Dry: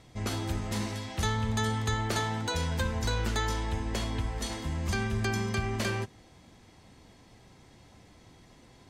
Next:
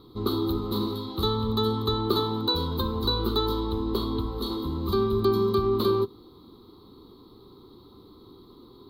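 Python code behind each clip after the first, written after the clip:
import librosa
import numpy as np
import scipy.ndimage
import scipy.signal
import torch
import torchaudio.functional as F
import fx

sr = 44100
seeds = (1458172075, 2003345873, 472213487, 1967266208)

y = fx.curve_eq(x, sr, hz=(160.0, 400.0, 640.0, 1200.0, 1700.0, 2700.0, 4000.0, 5700.0, 8400.0, 14000.0), db=(0, 15, -11, 12, -20, -16, 13, -22, -19, 15))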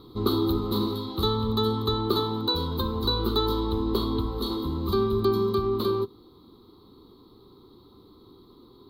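y = fx.rider(x, sr, range_db=10, speed_s=2.0)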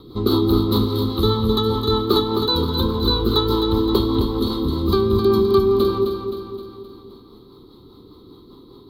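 y = fx.rotary(x, sr, hz=5.0)
y = fx.echo_feedback(y, sr, ms=261, feedback_pct=52, wet_db=-7)
y = y * librosa.db_to_amplitude(8.0)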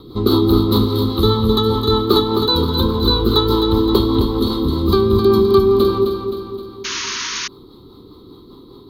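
y = fx.spec_paint(x, sr, seeds[0], shape='noise', start_s=6.84, length_s=0.64, low_hz=920.0, high_hz=6800.0, level_db=-28.0)
y = y * librosa.db_to_amplitude(3.5)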